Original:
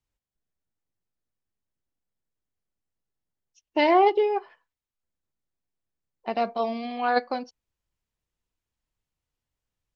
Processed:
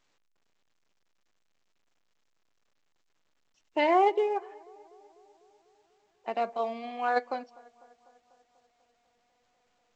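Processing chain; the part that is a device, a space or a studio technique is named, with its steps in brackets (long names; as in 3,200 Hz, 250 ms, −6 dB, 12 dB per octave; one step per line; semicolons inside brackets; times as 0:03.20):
tape delay 247 ms, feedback 70%, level −23 dB, low-pass 2,200 Hz
telephone (band-pass filter 310–3,200 Hz; level −3.5 dB; A-law companding 128 kbit/s 16,000 Hz)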